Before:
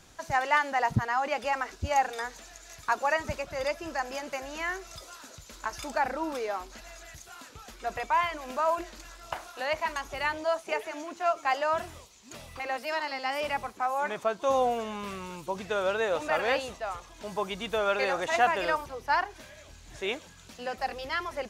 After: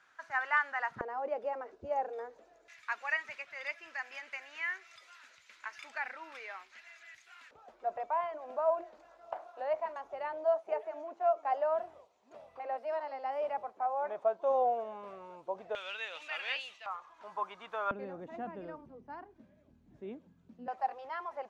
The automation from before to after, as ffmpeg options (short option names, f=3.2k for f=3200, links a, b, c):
-af "asetnsamples=n=441:p=0,asendcmd='1.01 bandpass f 490;2.68 bandpass f 2100;7.51 bandpass f 650;15.75 bandpass f 2800;16.86 bandpass f 1100;17.91 bandpass f 220;20.68 bandpass f 830',bandpass=f=1.5k:t=q:w=2.6:csg=0"